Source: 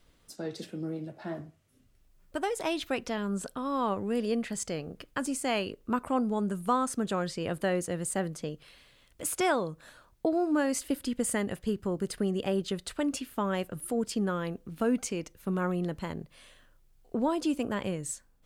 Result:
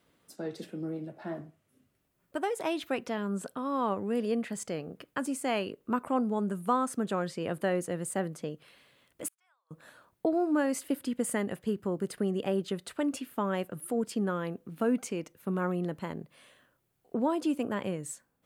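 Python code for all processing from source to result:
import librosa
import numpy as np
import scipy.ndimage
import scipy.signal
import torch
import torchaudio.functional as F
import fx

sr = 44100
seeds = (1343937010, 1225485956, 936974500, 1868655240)

y = fx.chain(x, sr, fx.median_filter(points=3),
    fx.highpass(hz=1000.0, slope=24),
    fx.gate_flip(shuts_db=-33.0, range_db=-37), at=(9.28, 9.71))
y = scipy.signal.sosfilt(scipy.signal.butter(2, 140.0, 'highpass', fs=sr, output='sos'), y)
y = fx.peak_eq(y, sr, hz=5400.0, db=-6.5, octaves=1.7)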